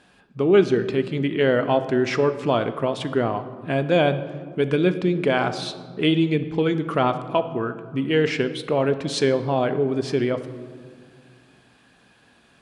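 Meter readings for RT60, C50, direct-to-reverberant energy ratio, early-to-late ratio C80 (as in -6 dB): 1.9 s, 12.5 dB, 10.0 dB, 14.0 dB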